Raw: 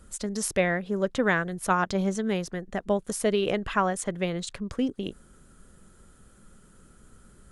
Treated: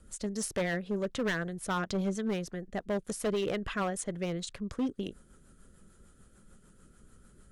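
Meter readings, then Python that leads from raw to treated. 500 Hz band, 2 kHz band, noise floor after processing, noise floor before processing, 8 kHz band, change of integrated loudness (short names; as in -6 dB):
-6.0 dB, -7.5 dB, -61 dBFS, -56 dBFS, -5.5 dB, -6.0 dB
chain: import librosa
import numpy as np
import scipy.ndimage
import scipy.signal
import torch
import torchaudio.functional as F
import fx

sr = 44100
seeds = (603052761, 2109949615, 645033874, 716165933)

y = fx.rotary(x, sr, hz=6.7)
y = np.clip(10.0 ** (23.5 / 20.0) * y, -1.0, 1.0) / 10.0 ** (23.5 / 20.0)
y = F.gain(torch.from_numpy(y), -2.5).numpy()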